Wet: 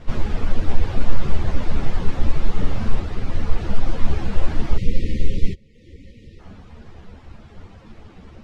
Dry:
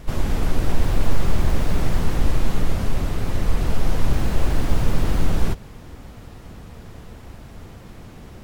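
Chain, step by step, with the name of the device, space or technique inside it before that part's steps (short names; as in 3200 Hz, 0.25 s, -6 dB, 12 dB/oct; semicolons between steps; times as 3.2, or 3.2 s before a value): 4.77–6.39 spectral delete 560–1800 Hz; reverb removal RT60 0.85 s; string-machine ensemble chorus (ensemble effect; LPF 4800 Hz 12 dB/oct); 2.54–3 flutter echo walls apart 7.8 m, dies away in 0.52 s; gain +3 dB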